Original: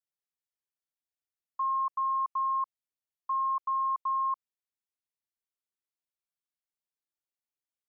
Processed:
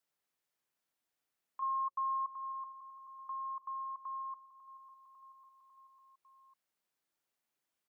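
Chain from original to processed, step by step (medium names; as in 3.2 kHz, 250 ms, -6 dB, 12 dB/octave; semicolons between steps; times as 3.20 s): hum notches 60/120/180/240/300/360/420/480/540 Hz; peak limiter -35.5 dBFS, peak gain reduction 10 dB; 1.62–2.32 s: small resonant body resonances 1.1 kHz, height 11 dB, ringing for 25 ms; feedback delay 549 ms, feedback 52%, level -17.5 dB; three bands compressed up and down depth 40%; trim -2 dB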